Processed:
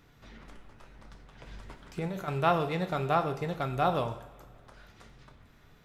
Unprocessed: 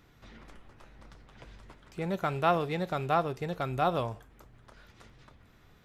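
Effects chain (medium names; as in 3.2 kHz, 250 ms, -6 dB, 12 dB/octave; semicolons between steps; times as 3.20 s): 1.46–2.28 s: compressor with a negative ratio -35 dBFS, ratio -1; two-slope reverb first 0.64 s, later 2.4 s, from -18 dB, DRR 7 dB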